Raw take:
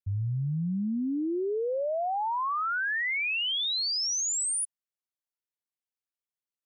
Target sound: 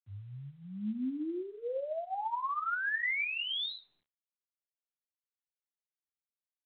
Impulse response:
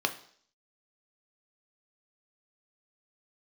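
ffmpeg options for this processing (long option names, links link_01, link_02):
-filter_complex "[0:a]bandreject=frequency=430:width=12[link_01];[1:a]atrim=start_sample=2205,asetrate=74970,aresample=44100[link_02];[link_01][link_02]afir=irnorm=-1:irlink=0,asplit=3[link_03][link_04][link_05];[link_03]afade=type=out:start_time=0.63:duration=0.02[link_06];[link_04]asubboost=boost=5.5:cutoff=240,afade=type=in:start_time=0.63:duration=0.02,afade=type=out:start_time=2.15:duration=0.02[link_07];[link_05]afade=type=in:start_time=2.15:duration=0.02[link_08];[link_06][link_07][link_08]amix=inputs=3:normalize=0,volume=-8.5dB" -ar 8000 -c:a pcm_mulaw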